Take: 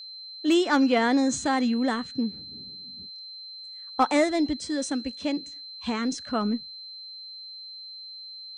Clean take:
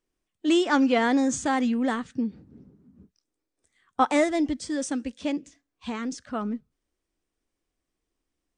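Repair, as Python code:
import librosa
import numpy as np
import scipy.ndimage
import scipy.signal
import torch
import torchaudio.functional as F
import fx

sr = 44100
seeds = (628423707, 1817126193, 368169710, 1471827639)

y = fx.fix_declip(x, sr, threshold_db=-13.0)
y = fx.notch(y, sr, hz=4100.0, q=30.0)
y = fx.fix_level(y, sr, at_s=5.56, step_db=-3.5)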